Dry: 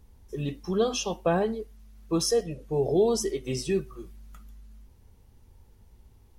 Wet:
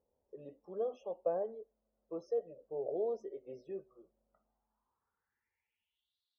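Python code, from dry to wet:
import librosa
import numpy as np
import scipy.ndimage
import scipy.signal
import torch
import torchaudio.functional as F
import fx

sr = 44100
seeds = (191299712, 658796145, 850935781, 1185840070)

y = fx.filter_sweep_bandpass(x, sr, from_hz=560.0, to_hz=3900.0, start_s=4.27, end_s=6.18, q=5.1)
y = fx.spec_topn(y, sr, count=64)
y = F.gain(torch.from_numpy(y), -3.5).numpy()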